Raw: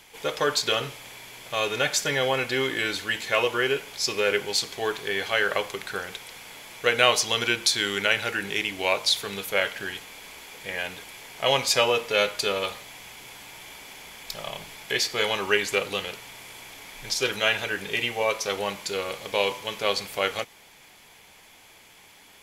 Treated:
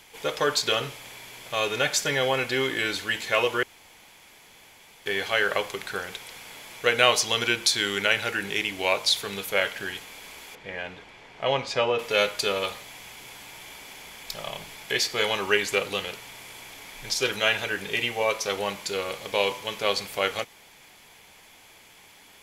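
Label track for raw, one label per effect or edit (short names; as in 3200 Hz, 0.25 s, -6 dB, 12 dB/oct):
3.630000	5.060000	room tone
10.550000	11.990000	tape spacing loss at 10 kHz 22 dB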